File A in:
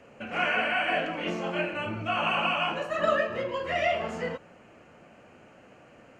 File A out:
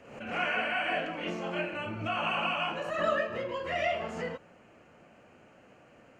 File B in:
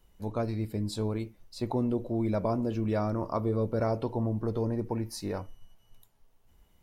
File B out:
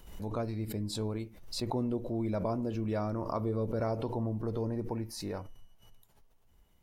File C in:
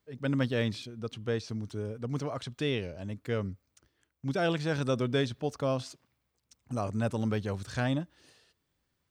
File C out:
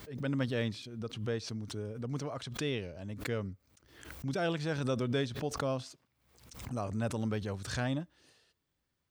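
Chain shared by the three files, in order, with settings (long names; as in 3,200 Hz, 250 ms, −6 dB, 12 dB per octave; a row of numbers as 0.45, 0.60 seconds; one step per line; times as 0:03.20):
background raised ahead of every attack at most 74 dB per second
level −4 dB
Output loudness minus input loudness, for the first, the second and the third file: −3.5, −3.5, −3.5 LU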